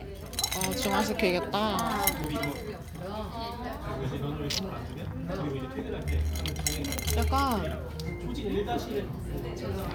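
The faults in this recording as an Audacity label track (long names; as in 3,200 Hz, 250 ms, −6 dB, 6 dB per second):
2.240000	2.240000	click −18 dBFS
6.980000	6.980000	click −14 dBFS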